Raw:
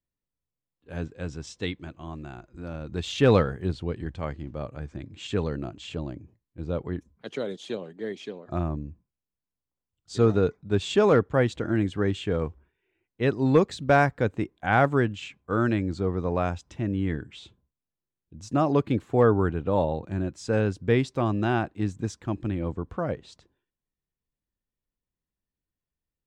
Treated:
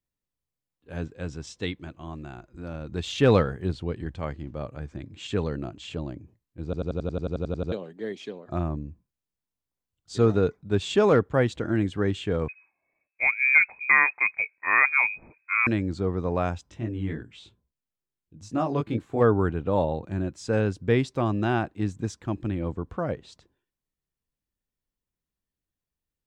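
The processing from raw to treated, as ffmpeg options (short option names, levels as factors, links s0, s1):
-filter_complex "[0:a]asettb=1/sr,asplit=3[s0][s1][s2];[s0]atrim=end=12.484[s3];[s1]atrim=start=12.48:end=15.67,asetpts=PTS-STARTPTS,afade=t=in:d=0.004:c=qsin,afade=t=out:st=3.186:d=0.004:c=qsin,lowpass=f=2200:t=q:w=0.5098,lowpass=f=2200:t=q:w=0.6013,lowpass=f=2200:t=q:w=0.9,lowpass=f=2200:t=q:w=2.563,afreqshift=-2600[s4];[s2]atrim=start=15.666[s5];[s3][s4]acrossfade=d=0.004:c1=hsin:c2=qsin[s6];[s6][s5]acrossfade=d=0.004:c1=qsin:c2=hsin,asplit=3[s7][s8][s9];[s7]afade=t=out:st=16.66:d=0.02[s10];[s8]flanger=delay=17.5:depth=2.4:speed=2.9,afade=t=in:st=16.66:d=0.02,afade=t=out:st=19.2:d=0.02[s11];[s9]afade=t=in:st=19.2:d=0.02[s12];[s10][s11][s12]amix=inputs=3:normalize=0,asplit=13[s13][s14][s15][s16][s17][s18][s19][s20][s21][s22][s23][s24][s25];[s13]atrim=end=6.732[s26];[s14]atrim=start=6.638:end=6.732[s27];[s15]atrim=start=6.638:end=6.732[s28];[s16]atrim=start=6.638:end=6.732[s29];[s17]atrim=start=6.638:end=6.732[s30];[s18]atrim=start=6.638:end=6.732[s31];[s19]atrim=start=6.638:end=6.732[s32];[s20]atrim=start=6.638:end=6.732[s33];[s21]atrim=start=6.638:end=6.732[s34];[s22]atrim=start=6.638:end=6.732[s35];[s23]atrim=start=6.638:end=6.732[s36];[s24]atrim=start=6.638:end=6.732[s37];[s25]atrim=start=7.718[s38];[s26][s27]acrossfade=d=0.004:c1=hsin:c2=hsin[s39];[s39][s28]acrossfade=d=0.004:c1=hsin:c2=hsin[s40];[s40][s29]acrossfade=d=0.004:c1=hsin:c2=hsin[s41];[s41][s30]acrossfade=d=0.004:c1=hsin:c2=hsin[s42];[s42][s31]acrossfade=d=0.004:c1=hsin:c2=hsin[s43];[s43][s32]acrossfade=d=0.004:c1=hsin:c2=hsin[s44];[s44][s33]acrossfade=d=0.004:c1=hsin:c2=hsin[s45];[s45][s34]acrossfade=d=0.004:c1=hsin:c2=hsin[s46];[s46][s35]acrossfade=d=0.004:c1=hsin:c2=hsin[s47];[s47][s36]acrossfade=d=0.004:c1=hsin:c2=hsin[s48];[s48][s37]acrossfade=d=0.004:c1=hsin:c2=hsin[s49];[s49][s38]acrossfade=d=0.004:c1=hsin:c2=hsin"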